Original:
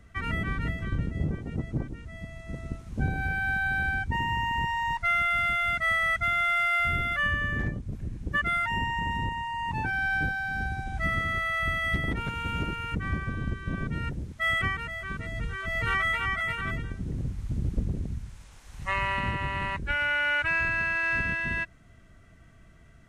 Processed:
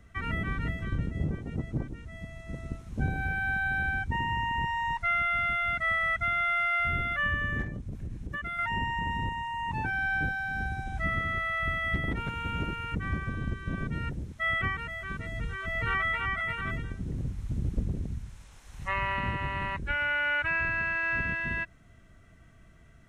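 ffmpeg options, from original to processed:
ffmpeg -i in.wav -filter_complex "[0:a]asettb=1/sr,asplit=3[link_01][link_02][link_03];[link_01]atrim=end=7.624[link_04];[link_02]atrim=start=7.62:end=8.59,asetpts=PTS-STARTPTS,afade=type=in:duration=0.004:curve=qsin,afade=type=out:start_time=0.966:duration=0.004:curve=qsin,acompressor=threshold=-30dB:ratio=6:attack=3.2:release=140:knee=1:detection=peak[link_05];[link_03]atrim=start=8.586[link_06];[link_04][link_05]acrossfade=duration=0.004:curve1=hsin:curve2=qsin[link_07];[link_07][link_06]acrossfade=duration=0.004:curve1=qsin:curve2=hsin,bandreject=frequency=4700:width=17,acrossover=split=3200[link_08][link_09];[link_09]acompressor=threshold=-51dB:ratio=4:attack=1:release=60[link_10];[link_08][link_10]amix=inputs=2:normalize=0,volume=-1.5dB" out.wav

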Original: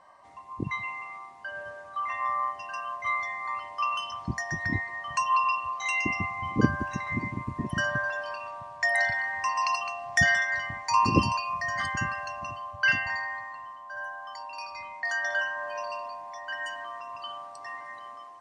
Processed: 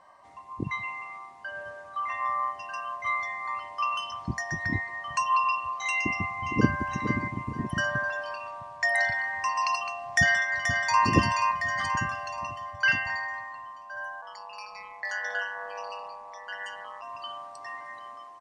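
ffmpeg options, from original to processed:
ffmpeg -i in.wav -filter_complex "[0:a]asplit=2[link_01][link_02];[link_02]afade=type=in:start_time=6:duration=0.01,afade=type=out:start_time=6.81:duration=0.01,aecho=0:1:460|920|1380:0.446684|0.111671|0.0279177[link_03];[link_01][link_03]amix=inputs=2:normalize=0,asplit=2[link_04][link_05];[link_05]afade=type=in:start_time=10.16:duration=0.01,afade=type=out:start_time=11.03:duration=0.01,aecho=0:1:480|960|1440|1920|2400|2880:0.530884|0.265442|0.132721|0.0663606|0.0331803|0.0165901[link_06];[link_04][link_06]amix=inputs=2:normalize=0,asplit=3[link_07][link_08][link_09];[link_07]afade=type=out:start_time=14.21:duration=0.02[link_10];[link_08]aeval=exprs='val(0)*sin(2*PI*99*n/s)':channel_layout=same,afade=type=in:start_time=14.21:duration=0.02,afade=type=out:start_time=17.01:duration=0.02[link_11];[link_09]afade=type=in:start_time=17.01:duration=0.02[link_12];[link_10][link_11][link_12]amix=inputs=3:normalize=0" out.wav

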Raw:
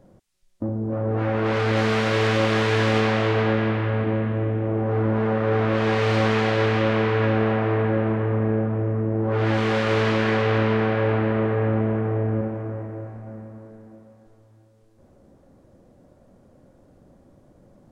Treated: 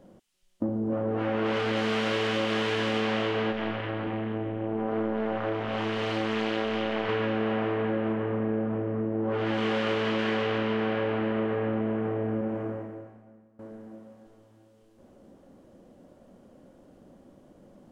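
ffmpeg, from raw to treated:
ffmpeg -i in.wav -filter_complex "[0:a]asplit=3[link_01][link_02][link_03];[link_01]afade=type=out:start_time=3.51:duration=0.02[link_04];[link_02]tremolo=f=220:d=0.947,afade=type=in:start_time=3.51:duration=0.02,afade=type=out:start_time=7.08:duration=0.02[link_05];[link_03]afade=type=in:start_time=7.08:duration=0.02[link_06];[link_04][link_05][link_06]amix=inputs=3:normalize=0,asettb=1/sr,asplit=3[link_07][link_08][link_09];[link_07]atrim=end=8.134[link_10];[link_08]atrim=start=8.13:end=10.19,asetpts=PTS-STARTPTS,afade=type=in:duration=0.004:curve=qsin,afade=type=out:start_time=2.056:duration=0.004:curve=qsin,highshelf=frequency=4800:gain=-5[link_11];[link_09]atrim=start=10.186[link_12];[link_10][link_11]acrossfade=duration=0.004:curve1=hsin:curve2=qsin[link_13];[link_13][link_12]acrossfade=duration=0.004:curve1=qsin:curve2=hsin,asplit=2[link_14][link_15];[link_14]atrim=end=13.59,asetpts=PTS-STARTPTS,afade=type=out:start_time=12.64:duration=0.95:curve=qua:silence=0.0891251[link_16];[link_15]atrim=start=13.59,asetpts=PTS-STARTPTS,afade=type=in:duration=0.004:curve=hsin:silence=0.0891251[link_17];[link_16][link_17]concat=n=2:v=0:a=1,equalizer=frequency=3000:width_type=o:width=0.29:gain=7,acompressor=threshold=-24dB:ratio=6,lowshelf=frequency=160:width_type=q:width=1.5:gain=-6" out.wav

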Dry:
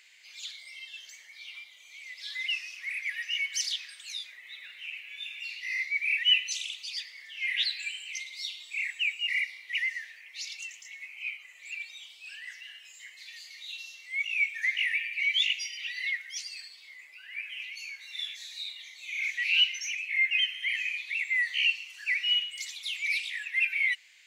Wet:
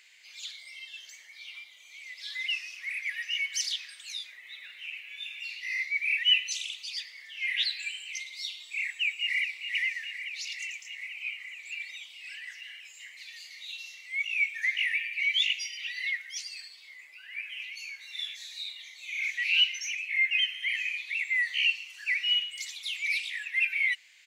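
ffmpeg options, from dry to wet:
ffmpeg -i in.wav -filter_complex "[0:a]asplit=2[link_01][link_02];[link_02]afade=type=in:start_time=8.76:duration=0.01,afade=type=out:start_time=9.59:duration=0.01,aecho=0:1:420|840|1260|1680|2100|2520|2940|3360|3780|4200|4620|5040:0.375837|0.30067|0.240536|0.192429|0.153943|0.123154|0.0985235|0.0788188|0.0630551|0.050444|0.0403552|0.0322842[link_03];[link_01][link_03]amix=inputs=2:normalize=0" out.wav

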